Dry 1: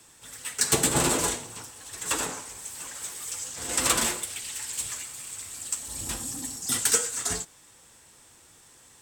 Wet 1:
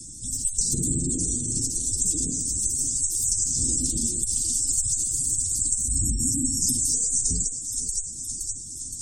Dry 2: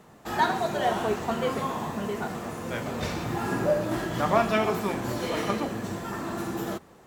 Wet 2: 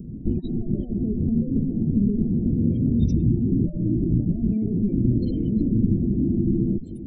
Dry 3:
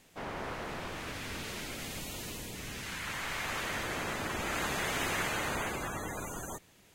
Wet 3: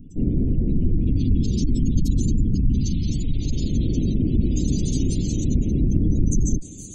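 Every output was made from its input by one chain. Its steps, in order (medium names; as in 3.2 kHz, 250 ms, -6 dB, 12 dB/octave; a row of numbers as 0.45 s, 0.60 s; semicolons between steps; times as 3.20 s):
thinning echo 518 ms, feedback 65%, high-pass 430 Hz, level -16.5 dB; peak limiter -20 dBFS; compression 10:1, threshold -35 dBFS; Chebyshev shaper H 8 -22 dB, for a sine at -22.5 dBFS; bass shelf 60 Hz +11 dB; spectral gate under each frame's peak -15 dB strong; elliptic band-stop 280–5500 Hz, stop band 80 dB; normalise loudness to -23 LUFS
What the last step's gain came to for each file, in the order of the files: +16.5 dB, +20.5 dB, +24.0 dB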